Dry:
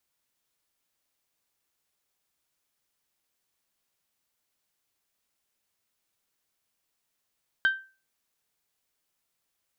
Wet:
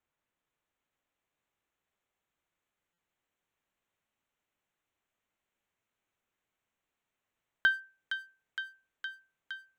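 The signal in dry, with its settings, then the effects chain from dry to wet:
glass hit bell, lowest mode 1560 Hz, decay 0.34 s, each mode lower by 12 dB, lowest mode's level -16.5 dB
Wiener smoothing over 9 samples; thin delay 0.464 s, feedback 79%, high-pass 2100 Hz, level -4 dB; stuck buffer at 2.93, samples 256, times 8

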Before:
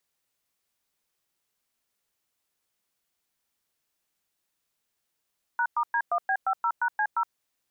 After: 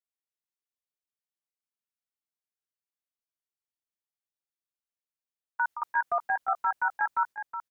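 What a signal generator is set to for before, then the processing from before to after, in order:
DTMF "#*D1B50#C0", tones 68 ms, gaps 0.107 s, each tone -25 dBFS
gate with hold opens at -19 dBFS; on a send: echo 0.368 s -9 dB

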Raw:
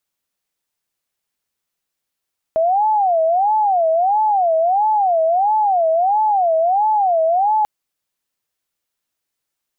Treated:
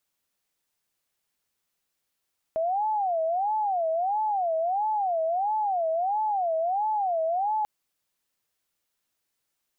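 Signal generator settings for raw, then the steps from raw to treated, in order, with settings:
siren wail 642–867 Hz 1.5/s sine -12.5 dBFS 5.09 s
limiter -23 dBFS

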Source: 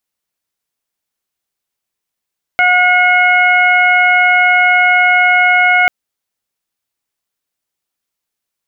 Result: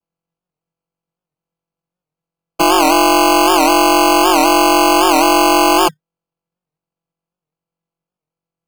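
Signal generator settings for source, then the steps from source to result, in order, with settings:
steady additive tone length 3.29 s, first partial 724 Hz, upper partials 1/3/-13.5 dB, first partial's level -13 dB
vocoder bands 16, square 165 Hz; sample-and-hold 24×; record warp 78 rpm, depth 160 cents

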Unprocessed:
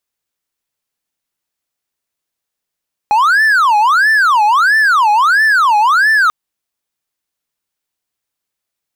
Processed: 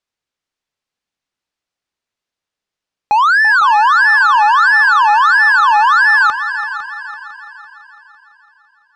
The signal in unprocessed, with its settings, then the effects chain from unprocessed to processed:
siren wail 830–1770 Hz 1.5/s triangle -5.5 dBFS 3.19 s
LPF 5500 Hz 12 dB/oct; on a send: multi-head echo 0.168 s, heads second and third, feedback 48%, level -13 dB

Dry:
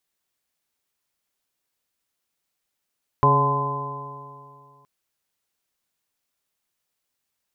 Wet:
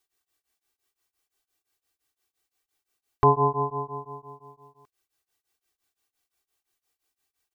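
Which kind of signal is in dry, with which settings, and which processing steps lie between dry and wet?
stretched partials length 1.62 s, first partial 138 Hz, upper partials -10/-4/-8/-10.5/-6/4.5 dB, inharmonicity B 0.0026, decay 2.36 s, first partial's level -18.5 dB
comb 2.6 ms, depth 100%; beating tremolo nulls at 5.8 Hz

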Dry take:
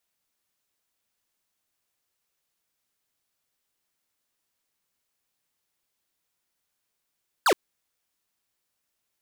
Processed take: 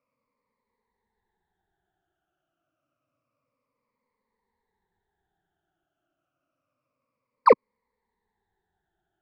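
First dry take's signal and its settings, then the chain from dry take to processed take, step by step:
laser zap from 1700 Hz, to 310 Hz, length 0.07 s square, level -19 dB
moving spectral ripple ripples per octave 0.93, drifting -0.28 Hz, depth 24 dB; LPF 1100 Hz 12 dB/oct; in parallel at -2 dB: limiter -15 dBFS

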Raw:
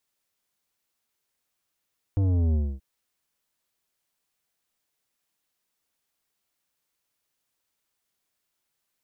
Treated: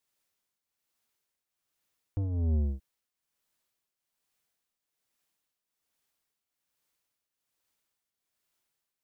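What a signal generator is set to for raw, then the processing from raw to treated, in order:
sub drop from 100 Hz, over 0.63 s, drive 11 dB, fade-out 0.26 s, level -21 dB
tremolo triangle 1.2 Hz, depth 70%

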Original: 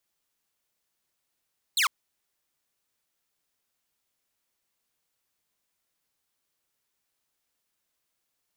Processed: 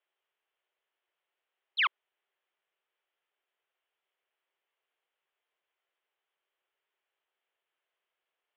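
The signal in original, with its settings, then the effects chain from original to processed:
laser zap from 4400 Hz, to 990 Hz, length 0.10 s saw, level -18 dB
Chebyshev band-pass 370–3200 Hz, order 4

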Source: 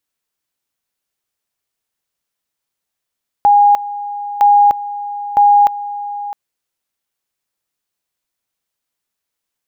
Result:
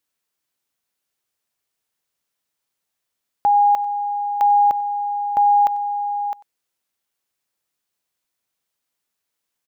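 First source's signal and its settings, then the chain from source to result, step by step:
two-level tone 819 Hz -5.5 dBFS, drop 15.5 dB, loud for 0.30 s, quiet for 0.66 s, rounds 3
low shelf 61 Hz -7 dB; limiter -11.5 dBFS; echo 94 ms -21.5 dB

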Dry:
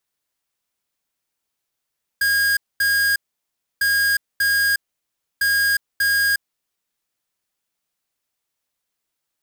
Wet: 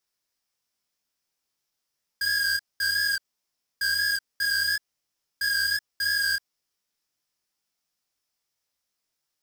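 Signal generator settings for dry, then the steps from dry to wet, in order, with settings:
beep pattern square 1630 Hz, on 0.36 s, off 0.23 s, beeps 2, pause 0.65 s, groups 3, -18 dBFS
bell 5300 Hz +8.5 dB 0.38 oct; limiter -18 dBFS; chorus 2.9 Hz, delay 18.5 ms, depth 4.6 ms

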